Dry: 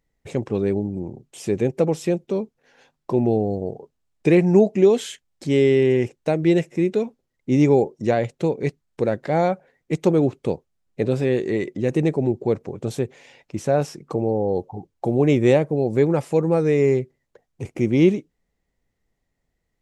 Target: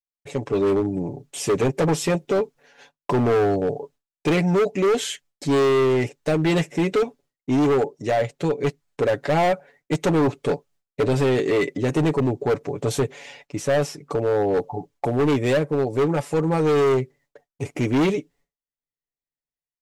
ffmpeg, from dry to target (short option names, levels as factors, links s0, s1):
-af "agate=range=0.0224:threshold=0.00316:ratio=3:detection=peak,lowshelf=f=300:g=-7.5,aecho=1:1:7:0.67,dynaudnorm=f=350:g=3:m=3.76,asoftclip=type=hard:threshold=0.188,volume=0.841"